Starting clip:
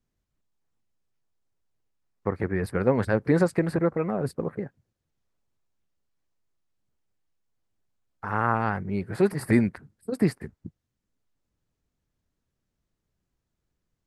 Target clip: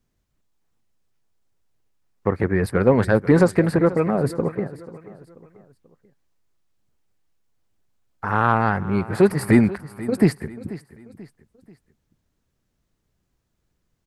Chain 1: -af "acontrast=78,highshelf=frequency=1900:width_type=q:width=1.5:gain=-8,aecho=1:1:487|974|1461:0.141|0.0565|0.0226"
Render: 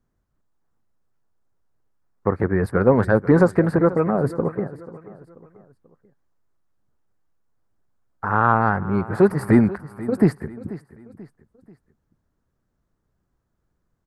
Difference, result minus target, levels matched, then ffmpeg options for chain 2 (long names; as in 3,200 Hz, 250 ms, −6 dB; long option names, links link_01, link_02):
4,000 Hz band −9.5 dB
-af "acontrast=78,aecho=1:1:487|974|1461:0.141|0.0565|0.0226"